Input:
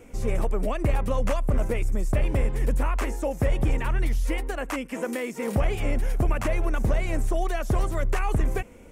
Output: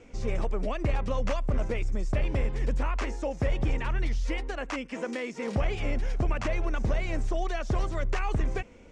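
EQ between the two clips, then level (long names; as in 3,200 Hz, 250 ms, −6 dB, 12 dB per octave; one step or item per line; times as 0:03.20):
low-pass filter 5,700 Hz 24 dB per octave
high-shelf EQ 3,900 Hz +8.5 dB
−4.0 dB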